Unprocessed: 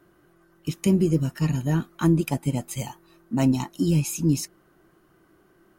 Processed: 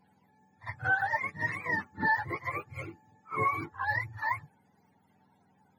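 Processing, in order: spectrum mirrored in octaves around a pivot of 540 Hz; reverse echo 53 ms -16.5 dB; gain -5 dB

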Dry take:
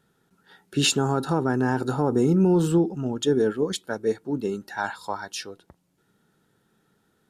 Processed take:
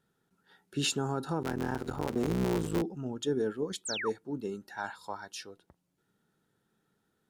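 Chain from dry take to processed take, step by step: 1.42–2.82 cycle switcher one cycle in 3, muted; 3.85–4.1 painted sound fall 790–9400 Hz -27 dBFS; gain -9 dB

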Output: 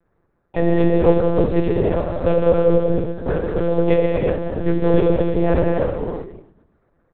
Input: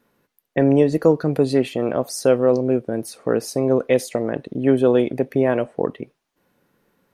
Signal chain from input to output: Wiener smoothing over 15 samples; in parallel at -4.5 dB: short-mantissa float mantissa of 2-bit; on the sum: harmoniser +5 st -13 dB; on a send: frequency-shifting echo 0.133 s, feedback 49%, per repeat -48 Hz, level -17 dB; on the sum: non-linear reverb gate 0.39 s flat, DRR -2 dB; monotone LPC vocoder at 8 kHz 170 Hz; gain -5.5 dB

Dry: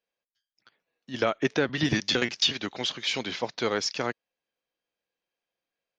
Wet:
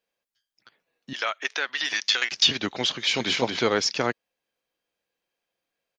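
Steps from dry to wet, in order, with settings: 1.13–2.32 HPF 1200 Hz 12 dB/oct; 2.93–3.38 echo throw 0.23 s, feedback 20%, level -3 dB; gain +4.5 dB

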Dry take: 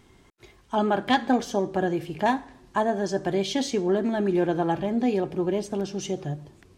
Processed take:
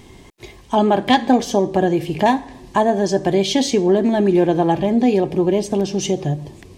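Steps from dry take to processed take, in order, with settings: bell 1400 Hz -12.5 dB 0.33 oct; in parallel at +2 dB: compressor, threshold -33 dBFS, peak gain reduction 15.5 dB; on the sum: gain +6 dB

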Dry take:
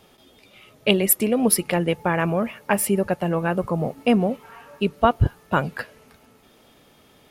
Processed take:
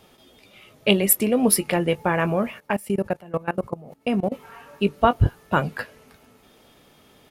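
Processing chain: doubler 20 ms -12.5 dB; 2.6–4.32 level quantiser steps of 21 dB

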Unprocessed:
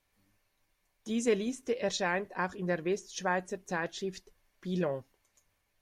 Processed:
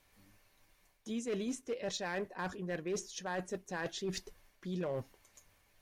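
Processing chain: reverse; compressor 5:1, threshold -43 dBFS, peak gain reduction 18.5 dB; reverse; hard clip -38 dBFS, distortion -18 dB; gain +7.5 dB

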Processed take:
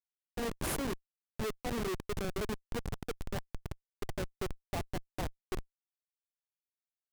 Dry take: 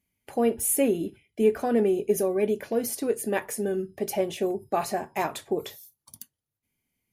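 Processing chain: dynamic EQ 210 Hz, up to -3 dB, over -32 dBFS, Q 1.1; Schmitt trigger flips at -22.5 dBFS; gain -5.5 dB

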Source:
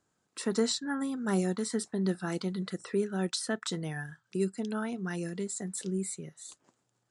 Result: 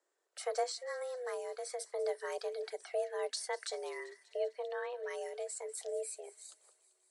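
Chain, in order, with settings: 0.63–1.8 compressor, threshold -31 dBFS, peak gain reduction 8 dB; 3.99–5.03 steep low-pass 4100 Hz 96 dB/oct; frequency shift +250 Hz; thin delay 0.195 s, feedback 68%, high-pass 1900 Hz, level -18 dB; gain -5.5 dB; MP3 80 kbps 44100 Hz

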